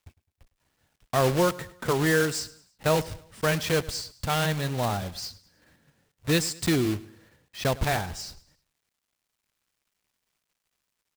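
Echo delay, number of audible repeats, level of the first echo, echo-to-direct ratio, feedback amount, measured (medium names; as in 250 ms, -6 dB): 105 ms, 3, -19.5 dB, -18.5 dB, 42%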